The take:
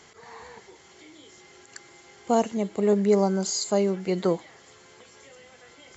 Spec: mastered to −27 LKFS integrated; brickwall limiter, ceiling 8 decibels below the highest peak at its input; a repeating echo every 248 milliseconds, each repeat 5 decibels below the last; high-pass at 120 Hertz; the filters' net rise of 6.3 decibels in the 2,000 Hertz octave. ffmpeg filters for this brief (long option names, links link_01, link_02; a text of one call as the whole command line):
ffmpeg -i in.wav -af "highpass=120,equalizer=frequency=2000:width_type=o:gain=7.5,alimiter=limit=-16.5dB:level=0:latency=1,aecho=1:1:248|496|744|992|1240|1488|1736:0.562|0.315|0.176|0.0988|0.0553|0.031|0.0173" out.wav